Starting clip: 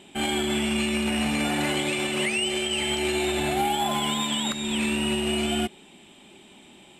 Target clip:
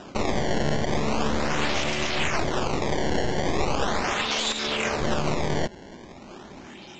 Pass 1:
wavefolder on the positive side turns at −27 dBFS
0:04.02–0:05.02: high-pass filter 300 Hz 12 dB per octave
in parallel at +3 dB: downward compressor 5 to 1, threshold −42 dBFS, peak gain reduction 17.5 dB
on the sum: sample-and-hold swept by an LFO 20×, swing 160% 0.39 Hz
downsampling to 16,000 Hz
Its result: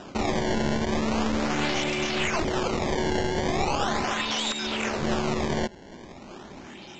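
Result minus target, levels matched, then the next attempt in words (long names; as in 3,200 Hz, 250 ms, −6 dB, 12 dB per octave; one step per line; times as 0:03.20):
downward compressor: peak gain reduction +7.5 dB; wavefolder on the positive side: distortion −10 dB
wavefolder on the positive side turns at −34.5 dBFS
0:04.02–0:05.02: high-pass filter 300 Hz 12 dB per octave
in parallel at +3 dB: downward compressor 5 to 1, threshold −32.5 dBFS, peak gain reduction 10 dB
on the sum: sample-and-hold swept by an LFO 20×, swing 160% 0.39 Hz
downsampling to 16,000 Hz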